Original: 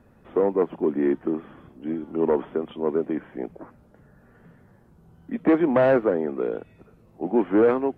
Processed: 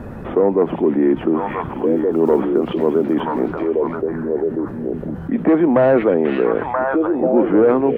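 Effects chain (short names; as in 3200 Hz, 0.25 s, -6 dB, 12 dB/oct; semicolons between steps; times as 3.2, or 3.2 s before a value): 1.39–3.56 block floating point 7-bit; high shelf 2200 Hz -10 dB; delay with a stepping band-pass 0.49 s, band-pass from 3000 Hz, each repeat -1.4 oct, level 0 dB; fast leveller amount 50%; gain +4 dB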